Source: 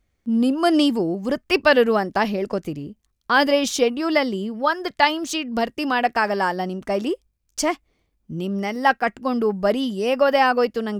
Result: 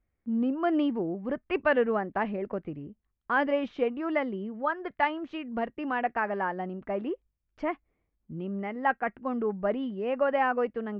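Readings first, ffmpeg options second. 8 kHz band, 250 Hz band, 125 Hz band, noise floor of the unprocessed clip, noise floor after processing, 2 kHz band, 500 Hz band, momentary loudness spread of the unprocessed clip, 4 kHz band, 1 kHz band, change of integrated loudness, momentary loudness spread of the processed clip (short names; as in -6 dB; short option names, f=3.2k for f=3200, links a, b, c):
under -40 dB, -8.5 dB, -8.5 dB, -71 dBFS, -80 dBFS, -9.0 dB, -8.5 dB, 10 LU, -20.0 dB, -8.5 dB, -9.0 dB, 10 LU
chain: -af "lowpass=f=2.3k:w=0.5412,lowpass=f=2.3k:w=1.3066,volume=-8.5dB"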